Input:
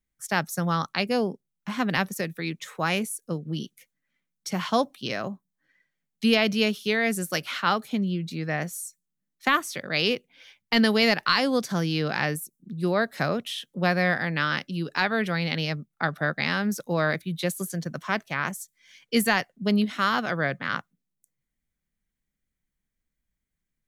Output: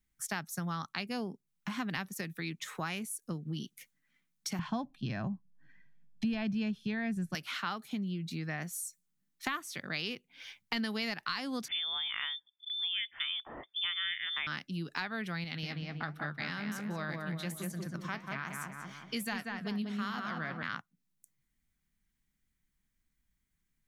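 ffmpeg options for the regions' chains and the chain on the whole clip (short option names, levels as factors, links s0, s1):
-filter_complex "[0:a]asettb=1/sr,asplit=3[s0][s1][s2];[s0]atrim=end=4.594[s3];[s1]atrim=start=4.59:end=7.35,asetpts=PTS-STARTPTS,afade=t=in:d=0.004:c=qsin,afade=t=out:st=2.756:d=0.004:c=qsin,aemphasis=mode=reproduction:type=riaa,aecho=1:1:1.2:0.38,atrim=end_sample=121716[s4];[s2]atrim=start=7.346[s5];[s3][s4]acrossfade=d=0.004:c1=hsin:c2=qsin[s6];[s6][s5]acrossfade=d=0.004:c1=qsin:c2=hsin,asettb=1/sr,asplit=3[s7][s8][s9];[s7]atrim=end=11.684[s10];[s8]atrim=start=11.68:end=14.47,asetpts=PTS-STARTPTS,afade=t=in:d=0.004:c=qsin,afade=t=out:st=2.786:d=0.004:c=qsin,highpass=59,lowpass=f=3100:t=q:w=0.5098,lowpass=f=3100:t=q:w=0.6013,lowpass=f=3100:t=q:w=0.9,lowpass=f=3100:t=q:w=2.563,afreqshift=-3700[s11];[s9]atrim=start=14.466[s12];[s10][s11]acrossfade=d=0.004:c1=hsin:c2=qsin[s13];[s13][s12]acrossfade=d=0.004:c1=qsin:c2=hsin,asettb=1/sr,asplit=3[s14][s15][s16];[s14]atrim=end=15.444[s17];[s15]atrim=start=15.44:end=20.63,asetpts=PTS-STARTPTS,afade=t=in:d=0.004:c=qsin,afade=t=out:st=5.186:d=0.004:c=qsin,asplit=2[s18][s19];[s19]adelay=188,lowpass=f=1900:p=1,volume=0.708,asplit=2[s20][s21];[s21]adelay=188,lowpass=f=1900:p=1,volume=0.46,asplit=2[s22][s23];[s23]adelay=188,lowpass=f=1900:p=1,volume=0.46,asplit=2[s24][s25];[s25]adelay=188,lowpass=f=1900:p=1,volume=0.46,asplit=2[s26][s27];[s27]adelay=188,lowpass=f=1900:p=1,volume=0.46,asplit=2[s28][s29];[s29]adelay=188,lowpass=f=1900:p=1,volume=0.46[s30];[s18][s20][s22][s24][s26][s28][s30]amix=inputs=7:normalize=0,atrim=end_sample=228879,flanger=delay=3.9:depth=8.6:regen=76:speed=1.3:shape=triangular[s31];[s16]atrim=start=20.626[s32];[s17][s31]acrossfade=d=0.004:c1=hsin:c2=qsin[s33];[s33][s32]acrossfade=d=0.004:c1=qsin:c2=hsin,equalizer=f=520:w=2:g=-9,acompressor=threshold=0.00891:ratio=3,volume=1.41"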